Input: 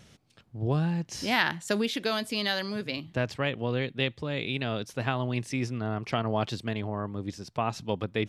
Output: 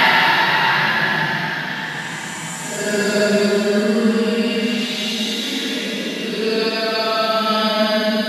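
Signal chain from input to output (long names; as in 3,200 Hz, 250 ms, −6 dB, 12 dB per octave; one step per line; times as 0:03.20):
coupled-rooms reverb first 0.47 s, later 2.2 s, from −16 dB, DRR −8 dB
extreme stretch with random phases 10×, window 0.10 s, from 0:01.41
level +1.5 dB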